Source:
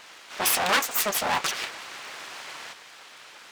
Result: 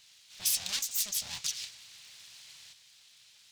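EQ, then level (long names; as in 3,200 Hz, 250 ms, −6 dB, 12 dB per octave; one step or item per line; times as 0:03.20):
drawn EQ curve 120 Hz 0 dB, 330 Hz −22 dB, 1,300 Hz −21 dB, 3,900 Hz 0 dB
dynamic equaliser 6,100 Hz, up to +6 dB, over −42 dBFS, Q 1.1
−7.0 dB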